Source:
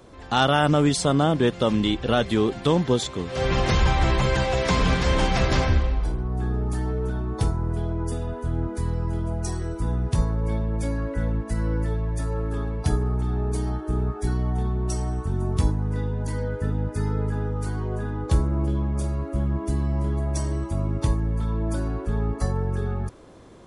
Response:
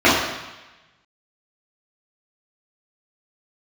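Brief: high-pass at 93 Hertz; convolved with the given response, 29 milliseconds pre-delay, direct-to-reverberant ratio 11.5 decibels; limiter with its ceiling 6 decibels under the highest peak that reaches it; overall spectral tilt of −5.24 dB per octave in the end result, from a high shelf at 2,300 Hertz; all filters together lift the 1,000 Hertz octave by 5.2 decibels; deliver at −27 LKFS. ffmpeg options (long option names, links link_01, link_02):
-filter_complex "[0:a]highpass=93,equalizer=frequency=1000:width_type=o:gain=6,highshelf=frequency=2300:gain=4,alimiter=limit=-9.5dB:level=0:latency=1,asplit=2[link_01][link_02];[1:a]atrim=start_sample=2205,adelay=29[link_03];[link_02][link_03]afir=irnorm=-1:irlink=0,volume=-39dB[link_04];[link_01][link_04]amix=inputs=2:normalize=0,volume=-1.5dB"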